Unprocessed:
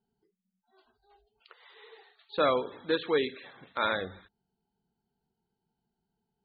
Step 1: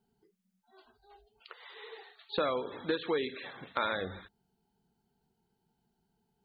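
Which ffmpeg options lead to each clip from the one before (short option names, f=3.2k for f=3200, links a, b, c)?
-af "acompressor=threshold=-34dB:ratio=5,volume=5dB"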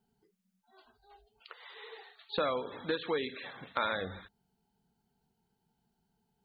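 -af "equalizer=f=360:w=3.1:g=-4.5"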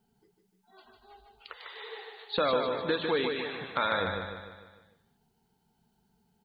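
-filter_complex "[0:a]asplit=2[a][b];[b]alimiter=level_in=0.5dB:limit=-24dB:level=0:latency=1,volume=-0.5dB,volume=-3dB[c];[a][c]amix=inputs=2:normalize=0,aecho=1:1:150|300|450|600|750|900:0.562|0.281|0.141|0.0703|0.0351|0.0176"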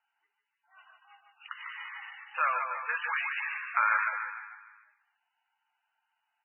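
-af "highpass=f=1.1k:w=0.5412,highpass=f=1.1k:w=1.3066,volume=6dB" -ar 16000 -c:a libmp3lame -b:a 8k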